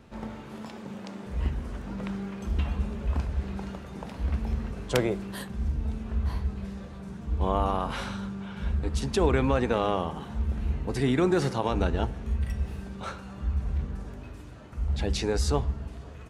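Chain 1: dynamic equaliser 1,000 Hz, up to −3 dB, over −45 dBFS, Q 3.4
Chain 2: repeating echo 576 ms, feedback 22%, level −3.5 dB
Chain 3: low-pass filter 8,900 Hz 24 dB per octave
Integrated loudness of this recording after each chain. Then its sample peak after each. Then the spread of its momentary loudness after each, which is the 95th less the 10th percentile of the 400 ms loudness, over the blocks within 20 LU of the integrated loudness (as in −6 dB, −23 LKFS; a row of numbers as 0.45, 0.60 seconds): −30.5, −28.0, −30.5 LKFS; −10.0, −8.5, −9.5 dBFS; 15, 11, 15 LU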